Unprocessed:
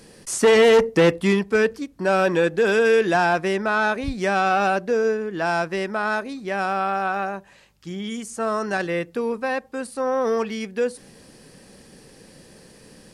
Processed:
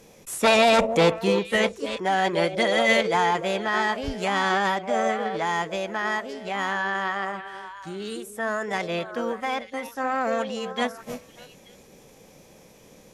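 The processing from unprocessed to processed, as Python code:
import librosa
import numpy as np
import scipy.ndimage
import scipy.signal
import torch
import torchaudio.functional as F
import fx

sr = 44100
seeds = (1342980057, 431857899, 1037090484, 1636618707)

y = scipy.signal.sosfilt(scipy.signal.butter(2, 8500.0, 'lowpass', fs=sr, output='sos'), x)
y = fx.echo_stepped(y, sr, ms=295, hz=370.0, octaves=1.4, feedback_pct=70, wet_db=-7.0)
y = fx.formant_shift(y, sr, semitones=4)
y = y * librosa.db_to_amplitude(-3.5)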